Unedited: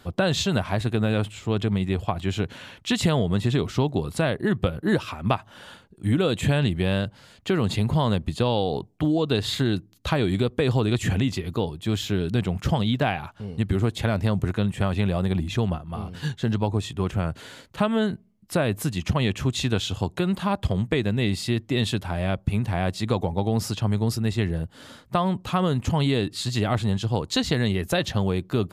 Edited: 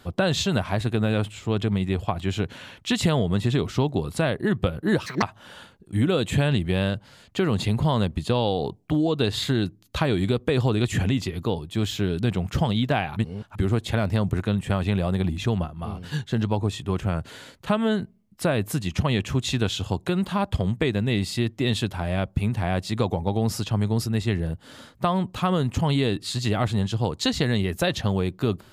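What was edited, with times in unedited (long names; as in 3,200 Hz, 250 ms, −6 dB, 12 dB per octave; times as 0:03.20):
0:05.06–0:05.33: play speed 166%
0:13.27–0:13.66: reverse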